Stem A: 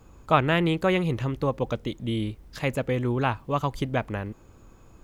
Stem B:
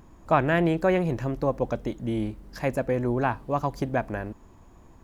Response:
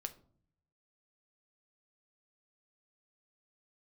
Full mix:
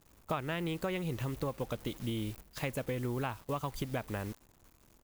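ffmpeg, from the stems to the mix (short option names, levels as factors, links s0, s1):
-filter_complex "[0:a]acrusher=bits=7:mix=0:aa=0.000001,volume=0.668[s0];[1:a]aeval=exprs='(mod(11.2*val(0)+1,2)-1)/11.2':c=same,aeval=exprs='(tanh(50.1*val(0)+0.6)-tanh(0.6))/50.1':c=same,volume=-1,adelay=0.4,volume=0.158,asplit=2[s1][s2];[s2]apad=whole_len=221915[s3];[s0][s3]sidechaingate=range=0.251:threshold=0.001:ratio=16:detection=peak[s4];[s4][s1]amix=inputs=2:normalize=0,highshelf=f=8400:g=9.5,acompressor=threshold=0.0251:ratio=6"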